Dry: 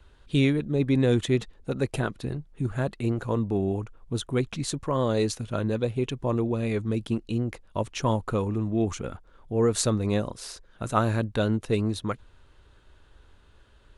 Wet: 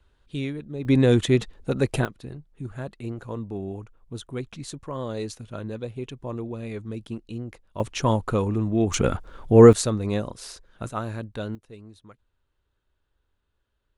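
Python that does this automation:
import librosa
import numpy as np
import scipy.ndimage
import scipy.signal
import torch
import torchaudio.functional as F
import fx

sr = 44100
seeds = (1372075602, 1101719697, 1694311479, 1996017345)

y = fx.gain(x, sr, db=fx.steps((0.0, -8.0), (0.85, 4.0), (2.05, -6.5), (7.8, 3.0), (8.94, 12.0), (9.73, -0.5), (10.89, -7.0), (11.55, -19.5)))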